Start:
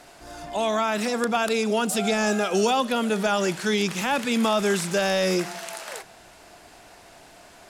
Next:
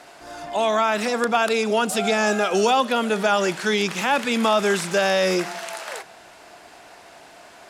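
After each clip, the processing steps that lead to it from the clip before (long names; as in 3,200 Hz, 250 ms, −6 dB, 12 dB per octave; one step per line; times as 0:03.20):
high-pass filter 1,000 Hz 6 dB per octave
spectral tilt −2.5 dB per octave
level +7.5 dB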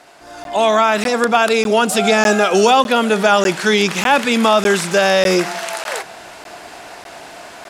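automatic gain control gain up to 10.5 dB
regular buffer underruns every 0.60 s, samples 512, zero, from 0:00.44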